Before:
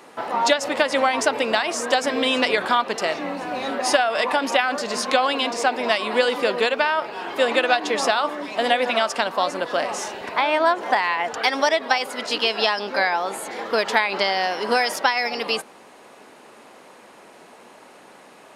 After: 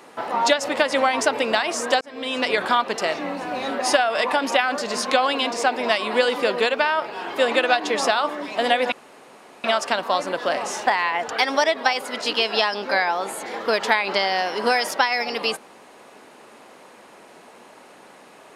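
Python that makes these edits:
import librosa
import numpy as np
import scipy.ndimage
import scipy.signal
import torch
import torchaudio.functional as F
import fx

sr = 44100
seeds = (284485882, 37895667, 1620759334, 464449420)

y = fx.edit(x, sr, fx.fade_in_span(start_s=2.01, length_s=0.58),
    fx.insert_room_tone(at_s=8.92, length_s=0.72),
    fx.cut(start_s=10.15, length_s=0.77), tone=tone)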